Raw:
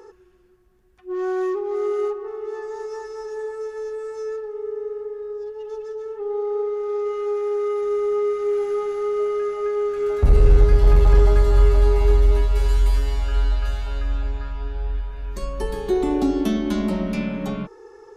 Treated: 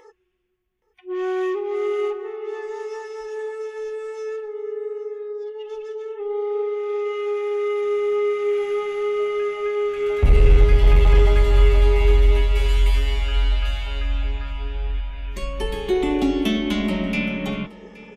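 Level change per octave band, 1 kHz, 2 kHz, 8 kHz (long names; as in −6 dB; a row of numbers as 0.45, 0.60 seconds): 0.0 dB, +7.0 dB, can't be measured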